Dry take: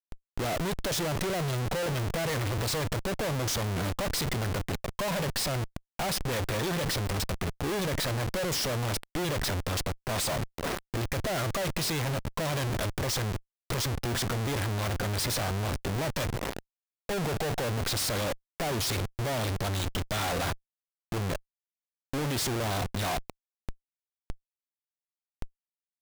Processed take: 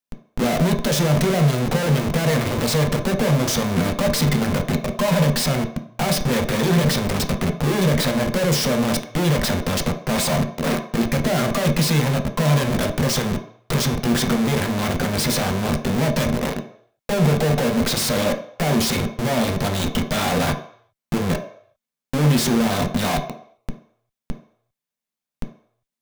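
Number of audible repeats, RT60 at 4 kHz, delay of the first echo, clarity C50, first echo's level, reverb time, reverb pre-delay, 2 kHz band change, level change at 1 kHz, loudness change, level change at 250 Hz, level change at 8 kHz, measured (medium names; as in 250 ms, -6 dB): no echo, 0.60 s, no echo, 9.5 dB, no echo, 0.60 s, 3 ms, +8.0 dB, +8.5 dB, +10.0 dB, +15.0 dB, +7.5 dB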